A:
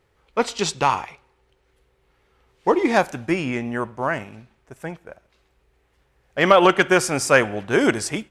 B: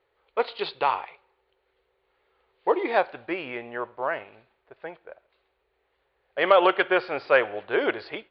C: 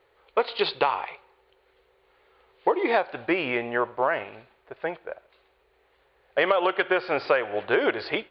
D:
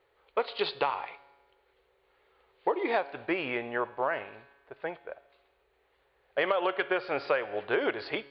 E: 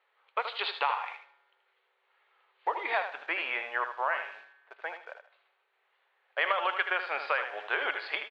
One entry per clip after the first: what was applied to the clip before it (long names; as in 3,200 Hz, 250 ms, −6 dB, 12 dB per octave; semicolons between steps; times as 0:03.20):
Butterworth low-pass 4,500 Hz 96 dB per octave; low shelf with overshoot 310 Hz −12.5 dB, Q 1.5; level −5.5 dB
downward compressor 16 to 1, threshold −26 dBFS, peak gain reduction 14.5 dB; level +8 dB
tuned comb filter 140 Hz, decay 1.3 s, mix 50%
in parallel at −8.5 dB: bit-depth reduction 8 bits, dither none; on the sum: flat-topped band-pass 1,800 Hz, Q 0.6; repeating echo 78 ms, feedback 23%, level −8.5 dB